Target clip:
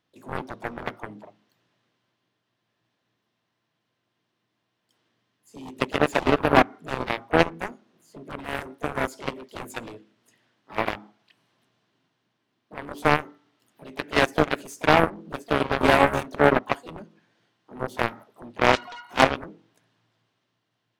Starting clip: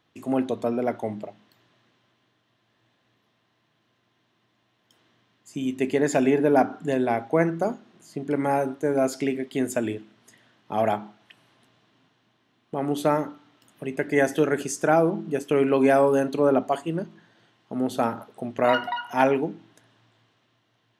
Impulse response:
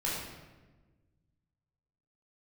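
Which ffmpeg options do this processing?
-filter_complex "[0:a]asplit=3[link_01][link_02][link_03];[link_02]asetrate=58866,aresample=44100,atempo=0.749154,volume=-11dB[link_04];[link_03]asetrate=66075,aresample=44100,atempo=0.66742,volume=-8dB[link_05];[link_01][link_04][link_05]amix=inputs=3:normalize=0,aeval=exprs='0.708*(cos(1*acos(clip(val(0)/0.708,-1,1)))-cos(1*PI/2))+0.126*(cos(7*acos(clip(val(0)/0.708,-1,1)))-cos(7*PI/2))':channel_layout=same,volume=3.5dB"

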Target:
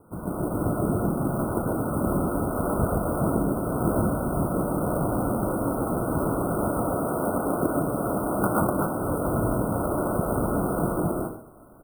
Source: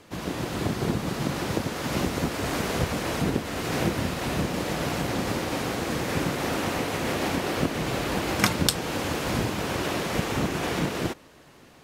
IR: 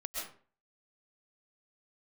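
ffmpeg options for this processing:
-filter_complex "[0:a]lowshelf=frequency=360:gain=5,aecho=1:1:122:0.211[link_01];[1:a]atrim=start_sample=2205[link_02];[link_01][link_02]afir=irnorm=-1:irlink=0,acrusher=samples=10:mix=1:aa=0.000001:lfo=1:lforange=10:lforate=0.83,asettb=1/sr,asplit=3[link_03][link_04][link_05];[link_03]atrim=end=6.954[link_06];[link_04]atrim=start=6.95:end=9,asetpts=PTS-STARTPTS,afade=type=in:duration=0.004:curve=qsin,afade=type=out:start_time=2.046:duration=0.004:curve=qsin,lowshelf=frequency=78:gain=-11[link_07];[link_05]atrim=start=8.996[link_08];[link_06][link_07]acrossfade=duration=0.004:curve1=hsin:curve2=qsin[link_09];[link_09][link_08]acrossfade=duration=0.004:curve1=qsin:curve2=hsin,afftfilt=real='re*(1-between(b*sr/4096,1500,8300))':imag='im*(1-between(b*sr/4096,1500,8300))':win_size=4096:overlap=0.75"

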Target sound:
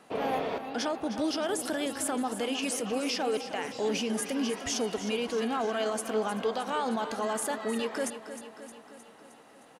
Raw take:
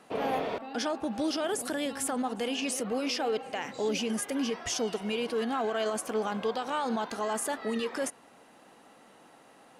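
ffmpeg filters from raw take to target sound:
ffmpeg -i in.wav -af "aecho=1:1:310|620|930|1240|1550|1860|2170:0.266|0.157|0.0926|0.0546|0.0322|0.019|0.0112" out.wav

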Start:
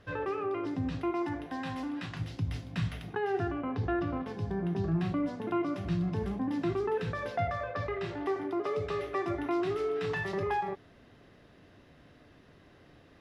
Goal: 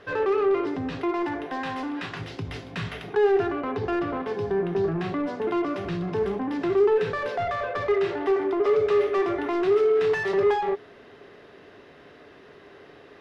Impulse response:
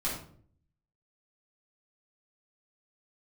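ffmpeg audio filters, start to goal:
-filter_complex "[0:a]asplit=2[link_01][link_02];[link_02]highpass=frequency=720:poles=1,volume=18dB,asoftclip=type=tanh:threshold=-20dB[link_03];[link_01][link_03]amix=inputs=2:normalize=0,lowpass=frequency=2600:poles=1,volume=-6dB,equalizer=frequency=410:width=5.2:gain=11"

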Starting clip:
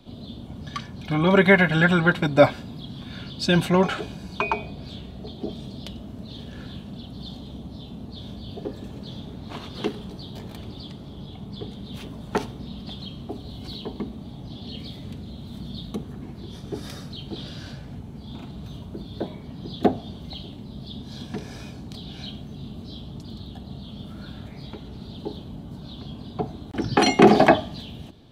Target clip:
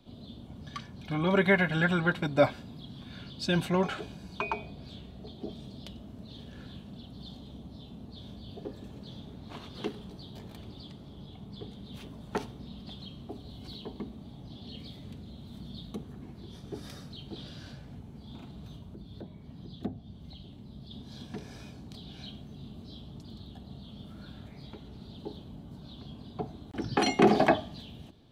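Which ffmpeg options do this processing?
ffmpeg -i in.wav -filter_complex "[0:a]asettb=1/sr,asplit=3[link_01][link_02][link_03];[link_01]atrim=end=18.744[link_04];[link_02]atrim=start=18.74:end=20.91,asetpts=PTS-STARTPTS,afade=type=in:duration=0.004:curve=qsin,afade=type=out:start_time=2.166:duration=0.004:curve=qsin,acrossover=split=220[link_05][link_06];[link_06]acompressor=threshold=-47dB:ratio=2[link_07];[link_05][link_07]amix=inputs=2:normalize=0[link_08];[link_03]atrim=start=20.906[link_09];[link_04][link_08]acrossfade=duration=0.004:curve1=hsin:curve2=qsin[link_10];[link_10][link_09]acrossfade=duration=0.004:curve1=qsin:curve2=hsin,volume=-8dB" out.wav

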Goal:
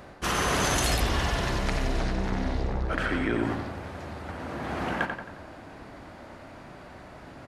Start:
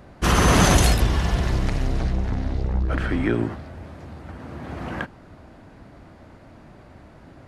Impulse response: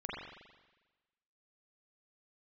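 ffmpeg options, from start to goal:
-filter_complex "[0:a]lowshelf=frequency=320:gain=-10,areverse,acompressor=threshold=-29dB:ratio=6,areverse,asplit=2[link_01][link_02];[link_02]adelay=89,lowpass=frequency=3900:poles=1,volume=-5.5dB,asplit=2[link_03][link_04];[link_04]adelay=89,lowpass=frequency=3900:poles=1,volume=0.51,asplit=2[link_05][link_06];[link_06]adelay=89,lowpass=frequency=3900:poles=1,volume=0.51,asplit=2[link_07][link_08];[link_08]adelay=89,lowpass=frequency=3900:poles=1,volume=0.51,asplit=2[link_09][link_10];[link_10]adelay=89,lowpass=frequency=3900:poles=1,volume=0.51,asplit=2[link_11][link_12];[link_12]adelay=89,lowpass=frequency=3900:poles=1,volume=0.51[link_13];[link_01][link_03][link_05][link_07][link_09][link_11][link_13]amix=inputs=7:normalize=0,volume=5dB"

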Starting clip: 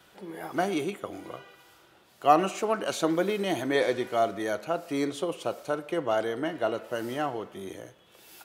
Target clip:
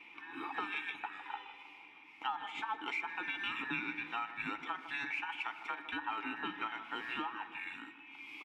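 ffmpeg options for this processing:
ffmpeg -i in.wav -filter_complex "[0:a]afftfilt=real='real(if(between(b,1,1012),(2*floor((b-1)/92)+1)*92-b,b),0)':imag='imag(if(between(b,1,1012),(2*floor((b-1)/92)+1)*92-b,b),0)*if(between(b,1,1012),-1,1)':win_size=2048:overlap=0.75,asplit=3[link_01][link_02][link_03];[link_01]bandpass=frequency=300:width_type=q:width=8,volume=0dB[link_04];[link_02]bandpass=frequency=870:width_type=q:width=8,volume=-6dB[link_05];[link_03]bandpass=frequency=2240:width_type=q:width=8,volume=-9dB[link_06];[link_04][link_05][link_06]amix=inputs=3:normalize=0,equalizer=frequency=2300:width_type=o:width=1.2:gain=15,acompressor=threshold=-46dB:ratio=10,asplit=2[link_07][link_08];[link_08]adelay=157,lowpass=frequency=1700:poles=1,volume=-11.5dB,asplit=2[link_09][link_10];[link_10]adelay=157,lowpass=frequency=1700:poles=1,volume=0.55,asplit=2[link_11][link_12];[link_12]adelay=157,lowpass=frequency=1700:poles=1,volume=0.55,asplit=2[link_13][link_14];[link_14]adelay=157,lowpass=frequency=1700:poles=1,volume=0.55,asplit=2[link_15][link_16];[link_16]adelay=157,lowpass=frequency=1700:poles=1,volume=0.55,asplit=2[link_17][link_18];[link_18]adelay=157,lowpass=frequency=1700:poles=1,volume=0.55[link_19];[link_07][link_09][link_11][link_13][link_15][link_17][link_19]amix=inputs=7:normalize=0,volume=11dB" out.wav

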